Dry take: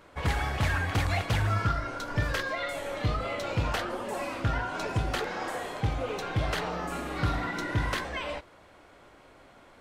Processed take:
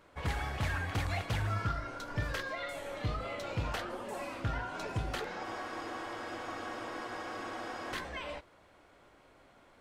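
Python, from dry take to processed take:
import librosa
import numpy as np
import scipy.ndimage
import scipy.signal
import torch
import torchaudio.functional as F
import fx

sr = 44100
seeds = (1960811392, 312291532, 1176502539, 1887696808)

y = fx.spec_freeze(x, sr, seeds[0], at_s=5.46, hold_s=2.48)
y = F.gain(torch.from_numpy(y), -6.5).numpy()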